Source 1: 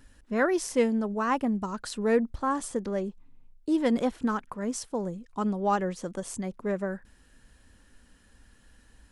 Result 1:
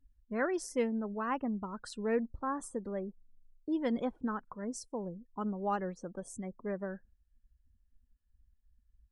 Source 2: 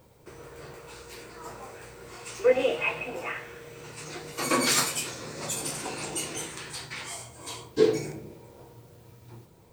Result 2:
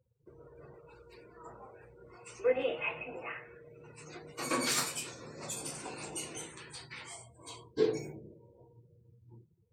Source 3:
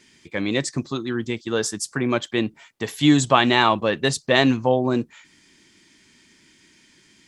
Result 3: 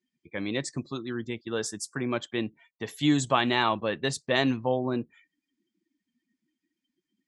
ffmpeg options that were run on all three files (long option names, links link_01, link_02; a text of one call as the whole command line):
ffmpeg -i in.wav -af "afftdn=noise_reduction=29:noise_floor=-44,volume=-7.5dB" out.wav